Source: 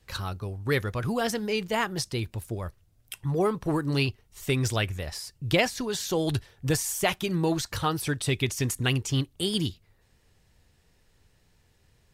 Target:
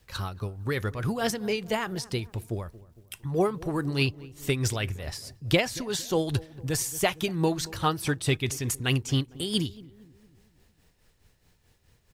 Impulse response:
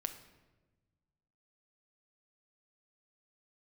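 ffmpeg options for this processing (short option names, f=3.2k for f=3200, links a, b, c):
-filter_complex "[0:a]acrusher=bits=11:mix=0:aa=0.000001,asplit=2[a][b];[b]adelay=229,lowpass=f=880:p=1,volume=-18dB,asplit=2[c][d];[d]adelay=229,lowpass=f=880:p=1,volume=0.54,asplit=2[e][f];[f]adelay=229,lowpass=f=880:p=1,volume=0.54,asplit=2[g][h];[h]adelay=229,lowpass=f=880:p=1,volume=0.54,asplit=2[i][j];[j]adelay=229,lowpass=f=880:p=1,volume=0.54[k];[c][e][g][i][k]amix=inputs=5:normalize=0[l];[a][l]amix=inputs=2:normalize=0,tremolo=f=4.7:d=0.58,volume=2dB"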